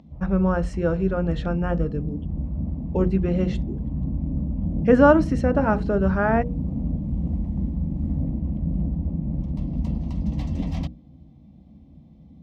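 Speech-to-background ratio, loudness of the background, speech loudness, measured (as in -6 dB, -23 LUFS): 6.0 dB, -28.5 LUFS, -22.5 LUFS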